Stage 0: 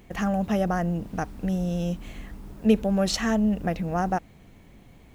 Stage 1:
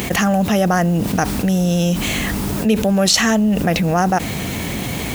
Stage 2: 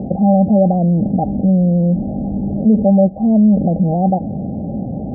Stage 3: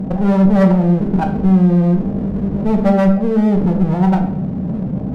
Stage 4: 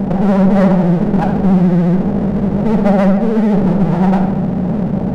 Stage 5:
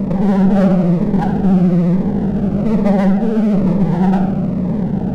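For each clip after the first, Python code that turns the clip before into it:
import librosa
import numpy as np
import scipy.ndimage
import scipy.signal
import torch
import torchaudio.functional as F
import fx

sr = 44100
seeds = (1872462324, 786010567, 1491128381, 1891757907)

y1 = scipy.signal.sosfilt(scipy.signal.butter(2, 80.0, 'highpass', fs=sr, output='sos'), x)
y1 = fx.high_shelf(y1, sr, hz=2600.0, db=10.5)
y1 = fx.env_flatten(y1, sr, amount_pct=70)
y1 = y1 * librosa.db_to_amplitude(2.0)
y2 = scipy.signal.sosfilt(scipy.signal.cheby1(6, 9, 820.0, 'lowpass', fs=sr, output='sos'), y1)
y2 = y2 * librosa.db_to_amplitude(5.5)
y3 = fx.spec_expand(y2, sr, power=1.6)
y3 = fx.clip_asym(y3, sr, top_db=-23.5, bottom_db=-8.5)
y3 = fx.room_shoebox(y3, sr, seeds[0], volume_m3=150.0, walls='mixed', distance_m=0.61)
y3 = y3 * librosa.db_to_amplitude(1.5)
y4 = fx.bin_compress(y3, sr, power=0.6)
y4 = fx.vibrato(y4, sr, rate_hz=14.0, depth_cents=90.0)
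y4 = fx.quant_dither(y4, sr, seeds[1], bits=12, dither='none')
y4 = y4 * librosa.db_to_amplitude(-1.0)
y5 = fx.notch_cascade(y4, sr, direction='falling', hz=1.1)
y5 = y5 * librosa.db_to_amplitude(-1.0)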